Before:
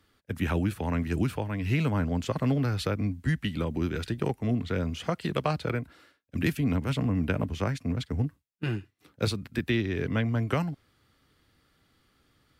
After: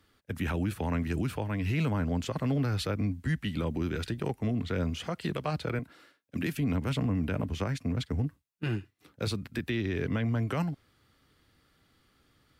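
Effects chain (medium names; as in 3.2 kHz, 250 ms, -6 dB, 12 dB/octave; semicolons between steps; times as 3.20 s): 5.79–6.55 s: high-pass 130 Hz 12 dB/octave; peak limiter -21.5 dBFS, peak gain reduction 8.5 dB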